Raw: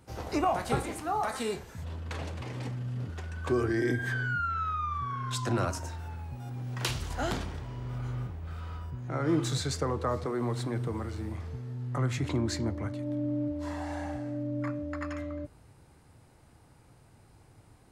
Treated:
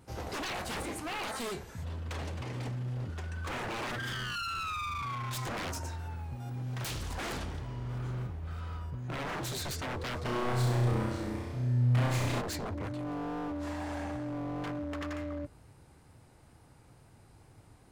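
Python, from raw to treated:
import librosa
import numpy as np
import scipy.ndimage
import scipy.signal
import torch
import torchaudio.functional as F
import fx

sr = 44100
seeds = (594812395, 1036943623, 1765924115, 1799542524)

y = 10.0 ** (-31.5 / 20.0) * (np.abs((x / 10.0 ** (-31.5 / 20.0) + 3.0) % 4.0 - 2.0) - 1.0)
y = fx.room_flutter(y, sr, wall_m=5.6, rt60_s=1.0, at=(10.24, 12.4), fade=0.02)
y = fx.wow_flutter(y, sr, seeds[0], rate_hz=2.1, depth_cents=18.0)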